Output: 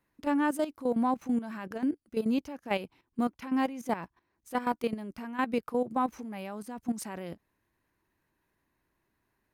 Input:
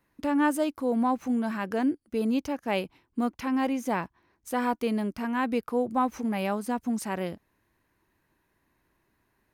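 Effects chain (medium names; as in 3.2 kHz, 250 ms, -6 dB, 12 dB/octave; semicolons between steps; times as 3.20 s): level held to a coarse grid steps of 13 dB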